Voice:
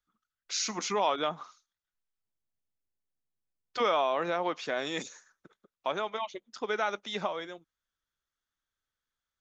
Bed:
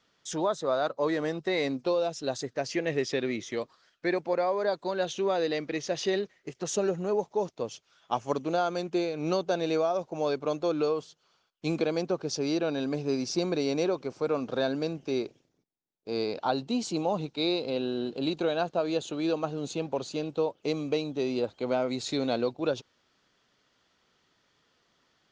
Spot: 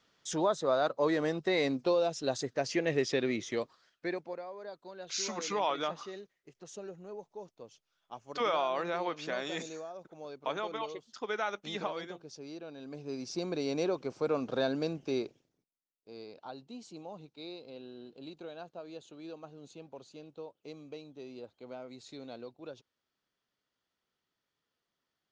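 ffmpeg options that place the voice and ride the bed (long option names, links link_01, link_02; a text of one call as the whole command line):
ffmpeg -i stem1.wav -i stem2.wav -filter_complex "[0:a]adelay=4600,volume=-3.5dB[link_01];[1:a]volume=13dB,afade=type=out:start_time=3.55:duration=0.88:silence=0.16788,afade=type=in:start_time=12.79:duration=1.3:silence=0.199526,afade=type=out:start_time=15.06:duration=1.08:silence=0.188365[link_02];[link_01][link_02]amix=inputs=2:normalize=0" out.wav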